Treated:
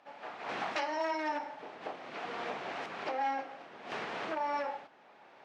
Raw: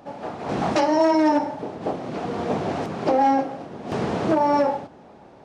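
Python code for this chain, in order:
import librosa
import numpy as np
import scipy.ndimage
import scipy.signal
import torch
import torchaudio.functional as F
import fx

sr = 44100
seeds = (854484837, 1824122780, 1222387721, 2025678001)

y = fx.recorder_agc(x, sr, target_db=-12.5, rise_db_per_s=9.2, max_gain_db=30)
y = fx.bandpass_q(y, sr, hz=2200.0, q=1.1)
y = F.gain(torch.from_numpy(y), -5.0).numpy()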